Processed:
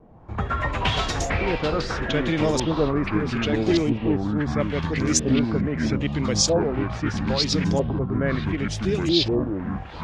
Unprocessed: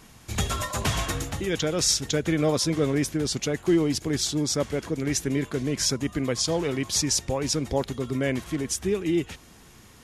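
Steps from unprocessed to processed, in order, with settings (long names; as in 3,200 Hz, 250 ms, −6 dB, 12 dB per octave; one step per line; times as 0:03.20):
auto-filter low-pass saw up 0.77 Hz 560–7,100 Hz
tape wow and flutter 21 cents
delay with pitch and tempo change per echo 99 ms, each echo −6 semitones, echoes 3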